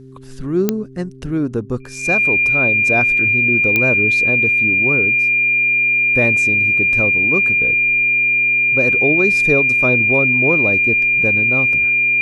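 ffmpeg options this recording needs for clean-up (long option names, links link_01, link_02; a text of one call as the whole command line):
ffmpeg -i in.wav -af "adeclick=threshold=4,bandreject=frequency=131.5:width_type=h:width=4,bandreject=frequency=263:width_type=h:width=4,bandreject=frequency=394.5:width_type=h:width=4,bandreject=frequency=2400:width=30" out.wav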